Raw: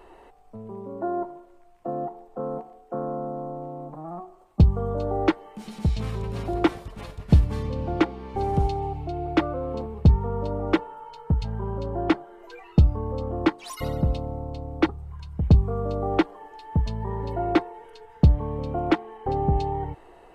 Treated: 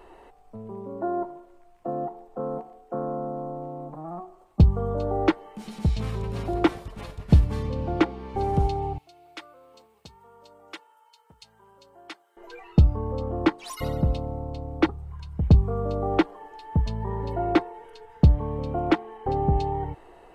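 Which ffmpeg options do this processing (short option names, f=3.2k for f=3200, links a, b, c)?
-filter_complex "[0:a]asettb=1/sr,asplit=3[a][b][c];[a]atrim=end=8.984[d];[b]atrim=start=8.98:end=12.37,asetpts=PTS-STARTPTS,afade=t=in:d=0.004:c=qsin,afade=t=out:st=3.386:d=0.004:c=qsin,aderivative[e];[c]atrim=start=12.366[f];[d][e]acrossfade=d=0.004:c1=hsin:c2=qsin[g];[g][f]acrossfade=d=0.004:c1=qsin:c2=hsin"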